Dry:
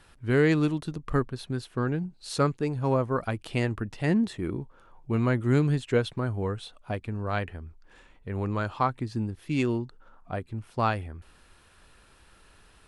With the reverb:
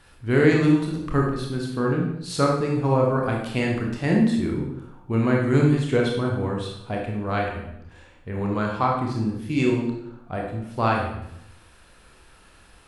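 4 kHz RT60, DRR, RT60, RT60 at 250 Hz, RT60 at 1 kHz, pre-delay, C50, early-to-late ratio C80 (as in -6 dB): 0.70 s, -1.5 dB, 0.80 s, 0.90 s, 0.75 s, 23 ms, 3.0 dB, 6.5 dB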